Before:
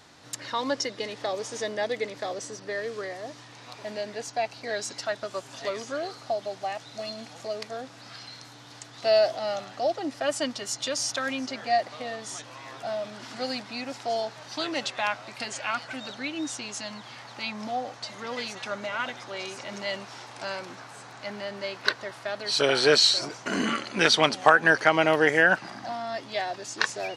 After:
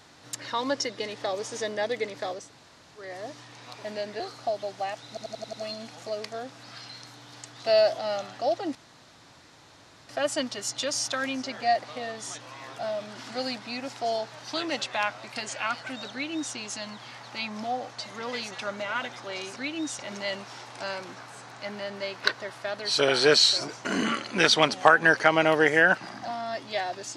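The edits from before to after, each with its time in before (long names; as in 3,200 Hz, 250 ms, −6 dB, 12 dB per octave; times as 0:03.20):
0:02.41–0:03.05: fill with room tone, crossfade 0.24 s
0:04.20–0:06.03: remove
0:06.91: stutter 0.09 s, 6 plays
0:10.13: splice in room tone 1.34 s
0:16.16–0:16.59: duplicate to 0:19.60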